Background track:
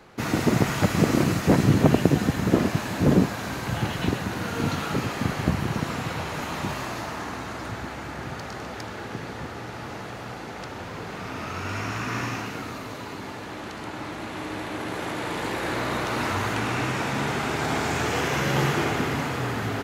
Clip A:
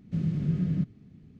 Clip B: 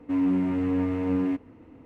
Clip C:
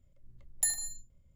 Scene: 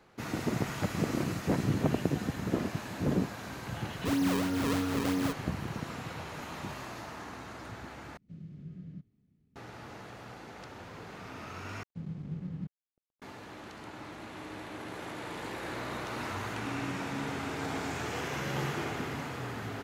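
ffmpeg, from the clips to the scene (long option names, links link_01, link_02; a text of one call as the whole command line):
ffmpeg -i bed.wav -i cue0.wav -i cue1.wav -filter_complex "[2:a]asplit=2[link_01][link_02];[1:a]asplit=2[link_03][link_04];[0:a]volume=-10.5dB[link_05];[link_01]acrusher=samples=36:mix=1:aa=0.000001:lfo=1:lforange=57.6:lforate=3.1[link_06];[link_04]aeval=exprs='sgn(val(0))*max(abs(val(0))-0.00668,0)':channel_layout=same[link_07];[link_02]acompressor=threshold=-32dB:ratio=6:attack=3.2:release=140:knee=1:detection=peak[link_08];[link_05]asplit=3[link_09][link_10][link_11];[link_09]atrim=end=8.174[link_12];[link_03]atrim=end=1.39,asetpts=PTS-STARTPTS,volume=-18dB[link_13];[link_10]atrim=start=9.556:end=11.834[link_14];[link_07]atrim=end=1.39,asetpts=PTS-STARTPTS,volume=-10.5dB[link_15];[link_11]atrim=start=13.216[link_16];[link_06]atrim=end=1.85,asetpts=PTS-STARTPTS,volume=-5.5dB,afade=type=in:duration=0.004:curve=hsin,afade=type=out:start_time=1.846:duration=0.004:curve=hsin,adelay=3960[link_17];[link_08]atrim=end=1.85,asetpts=PTS-STARTPTS,volume=-7dB,afade=type=in:duration=0.004:curve=hsin,afade=type=out:start_time=1.846:duration=0.004:curve=hsin,adelay=16560[link_18];[link_12][link_13]acrossfade=duration=0.004:curve1=hsin:curve2=hsin[link_19];[link_19][link_14]acrossfade=duration=0.004:curve1=hsin:curve2=hsin[link_20];[link_20][link_15]acrossfade=duration=0.004:curve1=hsin:curve2=hsin[link_21];[link_21][link_16]acrossfade=duration=0.004:curve1=hsin:curve2=hsin[link_22];[link_22][link_17][link_18]amix=inputs=3:normalize=0" out.wav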